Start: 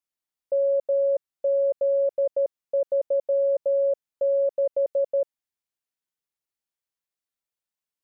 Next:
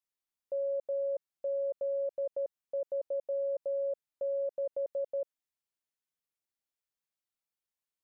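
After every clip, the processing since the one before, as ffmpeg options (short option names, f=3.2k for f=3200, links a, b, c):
-af "alimiter=level_in=1dB:limit=-24dB:level=0:latency=1,volume=-1dB,volume=-4dB"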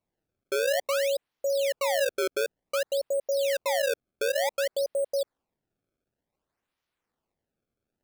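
-af "acrusher=samples=26:mix=1:aa=0.000001:lfo=1:lforange=41.6:lforate=0.55,volume=6.5dB"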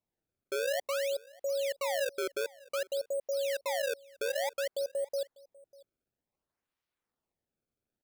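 -af "aecho=1:1:596:0.0668,volume=-6dB"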